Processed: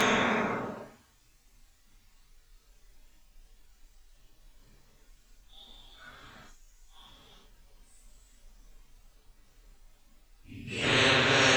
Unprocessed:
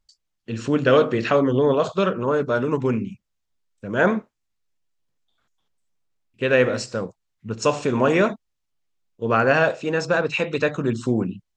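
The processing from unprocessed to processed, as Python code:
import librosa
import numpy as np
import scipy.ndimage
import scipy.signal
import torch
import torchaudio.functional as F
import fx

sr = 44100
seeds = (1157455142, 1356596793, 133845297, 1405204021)

y = fx.paulstretch(x, sr, seeds[0], factor=4.7, window_s=0.05, from_s=4.1)
y = fx.notch_comb(y, sr, f0_hz=170.0)
y = fx.spectral_comp(y, sr, ratio=4.0)
y = F.gain(torch.from_numpy(y), -4.0).numpy()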